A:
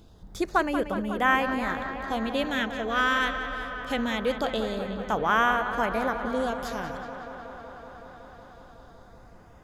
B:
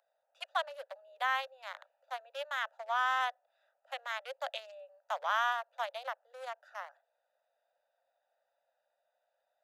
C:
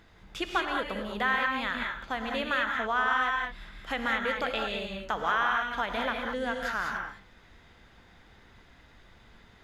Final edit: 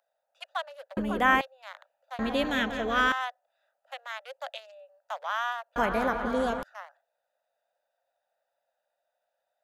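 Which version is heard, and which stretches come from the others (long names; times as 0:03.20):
B
0:00.97–0:01.41: punch in from A
0:02.19–0:03.12: punch in from A
0:05.76–0:06.63: punch in from A
not used: C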